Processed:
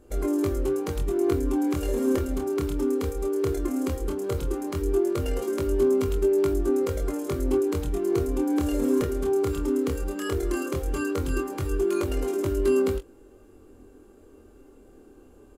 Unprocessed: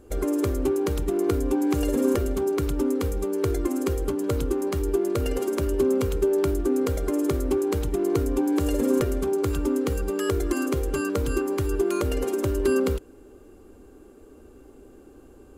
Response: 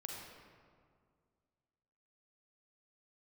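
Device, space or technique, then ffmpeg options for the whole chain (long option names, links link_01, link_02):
double-tracked vocal: -filter_complex "[0:a]asplit=2[link_01][link_02];[link_02]adelay=23,volume=-13dB[link_03];[link_01][link_03]amix=inputs=2:normalize=0,flanger=delay=20:depth=8:speed=0.16"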